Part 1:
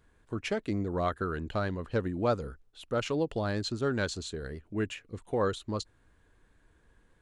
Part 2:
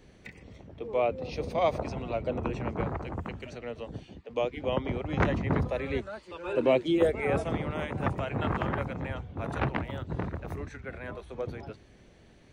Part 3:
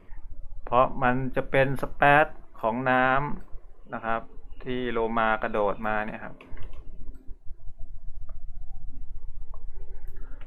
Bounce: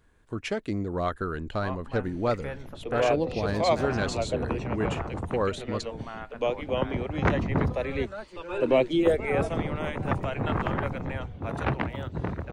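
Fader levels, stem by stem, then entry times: +1.5, +2.0, -16.0 dB; 0.00, 2.05, 0.90 s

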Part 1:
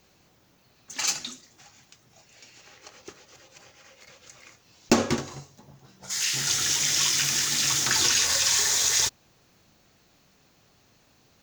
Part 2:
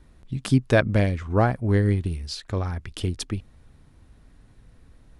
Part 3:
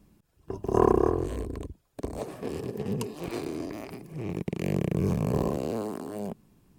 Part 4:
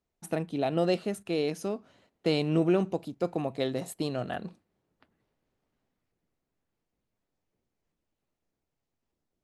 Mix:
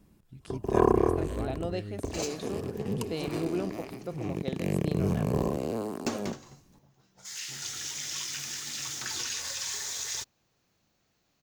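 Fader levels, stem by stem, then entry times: -12.0, -19.5, -1.0, -8.0 dB; 1.15, 0.00, 0.00, 0.85 s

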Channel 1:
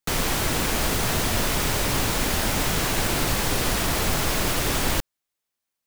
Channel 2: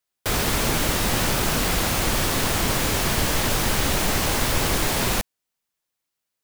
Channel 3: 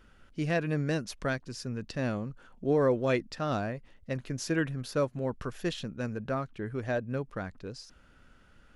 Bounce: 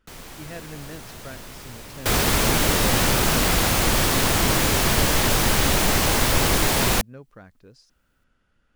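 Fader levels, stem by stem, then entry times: -16.5, +2.5, -9.0 dB; 0.00, 1.80, 0.00 s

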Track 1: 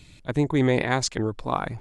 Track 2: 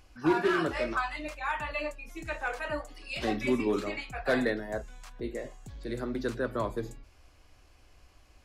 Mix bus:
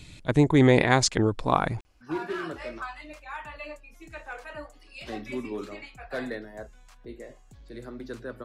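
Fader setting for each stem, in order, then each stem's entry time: +3.0, -6.0 dB; 0.00, 1.85 s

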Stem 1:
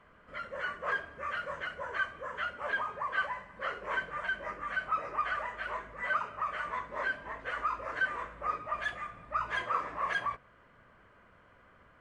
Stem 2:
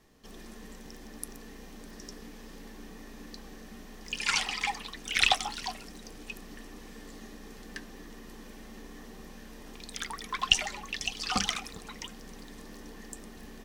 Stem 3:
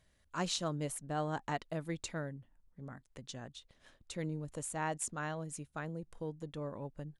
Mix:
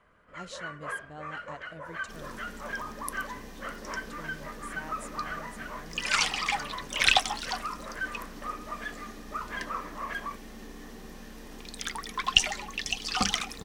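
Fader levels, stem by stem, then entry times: -3.5, +2.0, -8.5 dB; 0.00, 1.85, 0.00 s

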